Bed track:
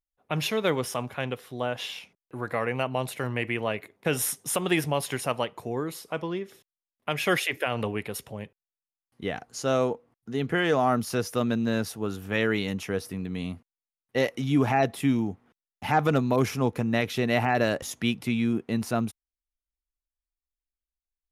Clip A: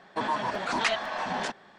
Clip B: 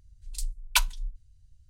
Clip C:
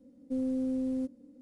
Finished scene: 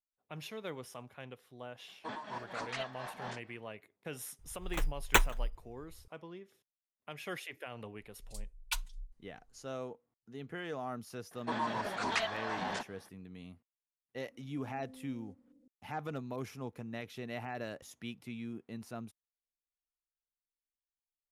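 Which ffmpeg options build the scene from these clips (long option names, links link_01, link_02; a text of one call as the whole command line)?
ffmpeg -i bed.wav -i cue0.wav -i cue1.wav -i cue2.wav -filter_complex "[1:a]asplit=2[link_01][link_02];[2:a]asplit=2[link_03][link_04];[0:a]volume=-17dB[link_05];[link_01]tremolo=f=4.3:d=0.67[link_06];[link_03]acrusher=samples=9:mix=1:aa=0.000001[link_07];[link_04]aecho=1:1:5.6:0.85[link_08];[3:a]acompressor=threshold=-41dB:ratio=6:attack=3.2:release=140:knee=1:detection=peak[link_09];[link_06]atrim=end=1.78,asetpts=PTS-STARTPTS,volume=-10.5dB,afade=type=in:duration=0.004:curve=hsin,afade=type=out:start_time=1.776:duration=0.004:curve=hsin,adelay=1880[link_10];[link_07]atrim=end=1.69,asetpts=PTS-STARTPTS,volume=-1dB,afade=type=in:duration=0.004:curve=hsin,afade=type=out:start_time=1.686:duration=0.004:curve=hsin,adelay=4390[link_11];[link_08]atrim=end=1.69,asetpts=PTS-STARTPTS,volume=-15.5dB,afade=type=in:duration=0.004:curve=hsin,afade=type=out:start_time=1.686:duration=0.004:curve=hsin,adelay=7960[link_12];[link_02]atrim=end=1.78,asetpts=PTS-STARTPTS,volume=-6.5dB,afade=type=in:duration=0.004:curve=hsin,afade=type=out:start_time=1.776:duration=0.004:curve=hsin,adelay=11310[link_13];[link_09]atrim=end=1.41,asetpts=PTS-STARTPTS,volume=-11dB,afade=type=in:duration=0.004:curve=hsin,afade=type=out:start_time=1.406:duration=0.004:curve=hsin,adelay=14270[link_14];[link_05][link_10][link_11][link_12][link_13][link_14]amix=inputs=6:normalize=0" out.wav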